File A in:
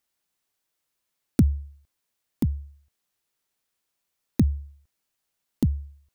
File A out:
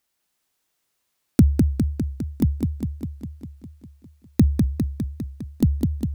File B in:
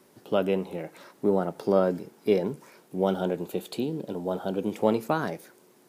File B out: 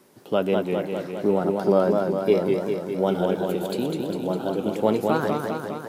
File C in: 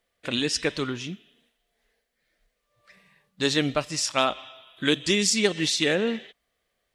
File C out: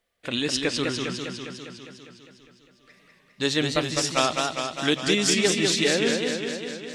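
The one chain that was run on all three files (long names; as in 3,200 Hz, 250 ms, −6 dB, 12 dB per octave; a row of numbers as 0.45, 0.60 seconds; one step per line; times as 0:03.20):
feedback echo with a swinging delay time 202 ms, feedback 67%, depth 117 cents, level −4 dB
loudness normalisation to −24 LKFS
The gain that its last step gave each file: +4.0, +2.0, −0.5 decibels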